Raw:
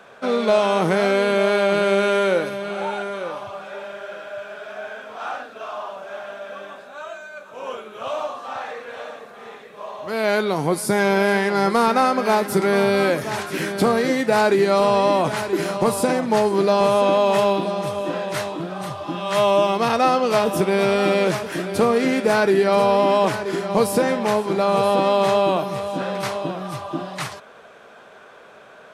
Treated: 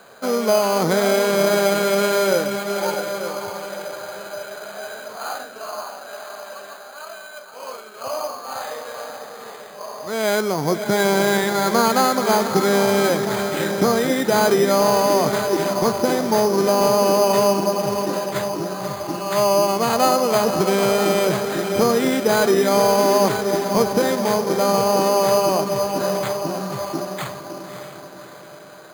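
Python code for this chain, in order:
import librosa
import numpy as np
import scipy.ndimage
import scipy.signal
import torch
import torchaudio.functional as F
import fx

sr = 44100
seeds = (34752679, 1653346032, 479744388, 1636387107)

y = fx.low_shelf(x, sr, hz=430.0, db=-10.0, at=(5.83, 8.04))
y = fx.echo_diffused(y, sr, ms=590, feedback_pct=47, wet_db=-8.0)
y = np.repeat(scipy.signal.resample_poly(y, 1, 8), 8)[:len(y)]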